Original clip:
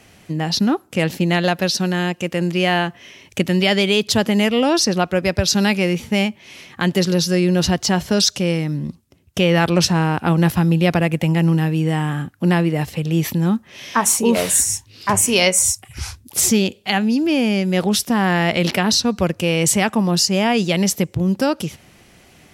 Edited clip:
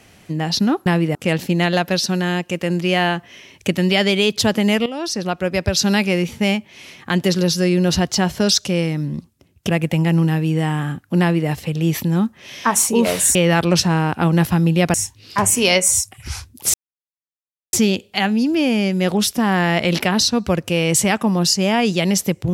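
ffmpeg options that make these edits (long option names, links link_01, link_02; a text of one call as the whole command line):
ffmpeg -i in.wav -filter_complex "[0:a]asplit=8[link_01][link_02][link_03][link_04][link_05][link_06][link_07][link_08];[link_01]atrim=end=0.862[link_09];[link_02]atrim=start=12.498:end=12.792[link_10];[link_03]atrim=start=0.858:end=4.57,asetpts=PTS-STARTPTS,afade=type=out:start_time=3.708:duration=0.004:curve=hsin:silence=0.188365[link_11];[link_04]atrim=start=4.57:end=9.402,asetpts=PTS-STARTPTS,afade=type=in:duration=1.16:curve=qsin:silence=0.188365[link_12];[link_05]atrim=start=10.988:end=14.652[link_13];[link_06]atrim=start=9.398:end=10.992[link_14];[link_07]atrim=start=14.648:end=16.45,asetpts=PTS-STARTPTS,afade=type=out:start_time=1.798:duration=0.004:curve=hsin,apad=pad_dur=0.99[link_15];[link_08]atrim=start=16.45,asetpts=PTS-STARTPTS,afade=type=in:duration=0.004:curve=hsin[link_16];[link_09][link_10]acrossfade=duration=0.004:curve1=hsin:curve2=hsin[link_17];[link_11][link_12]concat=n=2:v=0:a=1[link_18];[link_17][link_18]acrossfade=duration=0.004:curve1=hsin:curve2=hsin[link_19];[link_19][link_13]acrossfade=duration=0.004:curve1=hsin:curve2=hsin[link_20];[link_20][link_14]acrossfade=duration=0.004:curve1=hsin:curve2=hsin[link_21];[link_15][link_16]concat=n=2:v=0:a=1[link_22];[link_21][link_22]acrossfade=duration=0.004:curve1=hsin:curve2=hsin" out.wav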